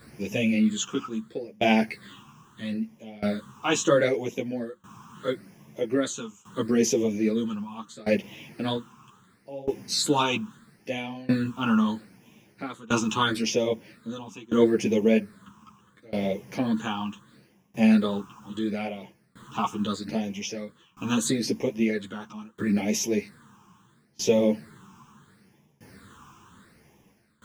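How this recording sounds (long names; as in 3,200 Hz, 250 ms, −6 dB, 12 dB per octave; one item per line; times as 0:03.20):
a quantiser's noise floor 10 bits, dither none
phaser sweep stages 8, 0.75 Hz, lowest notch 570–1,300 Hz
tremolo saw down 0.62 Hz, depth 95%
a shimmering, thickened sound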